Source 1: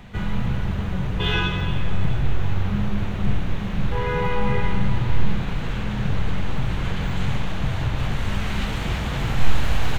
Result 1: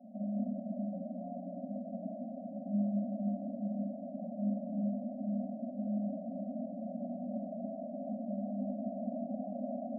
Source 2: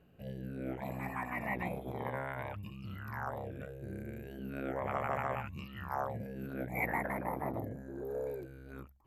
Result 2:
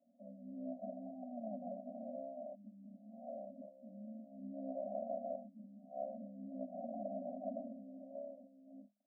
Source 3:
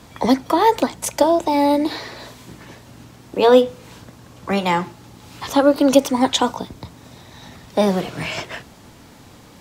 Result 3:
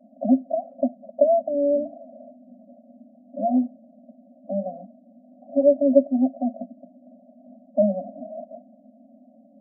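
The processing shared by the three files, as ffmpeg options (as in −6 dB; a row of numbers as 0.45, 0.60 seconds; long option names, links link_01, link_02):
-af "asuperpass=centerf=380:order=20:qfactor=0.77,afftfilt=real='re*eq(mod(floor(b*sr/1024/260),2),0)':imag='im*eq(mod(floor(b*sr/1024/260),2),0)':win_size=1024:overlap=0.75"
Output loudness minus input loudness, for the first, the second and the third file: −12.5, −7.5, −5.0 LU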